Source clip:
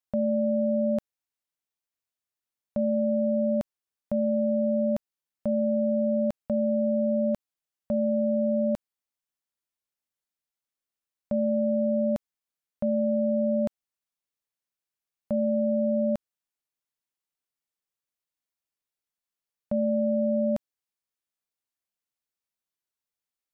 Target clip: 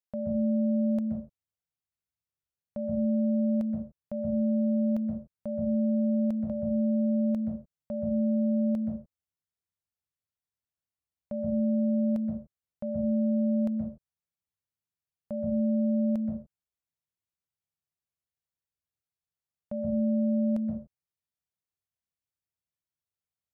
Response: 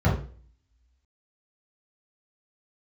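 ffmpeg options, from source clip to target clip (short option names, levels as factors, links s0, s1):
-filter_complex "[0:a]asplit=2[s0][s1];[1:a]atrim=start_sample=2205,afade=t=out:st=0.23:d=0.01,atrim=end_sample=10584,adelay=121[s2];[s1][s2]afir=irnorm=-1:irlink=0,volume=0.106[s3];[s0][s3]amix=inputs=2:normalize=0,volume=0.422"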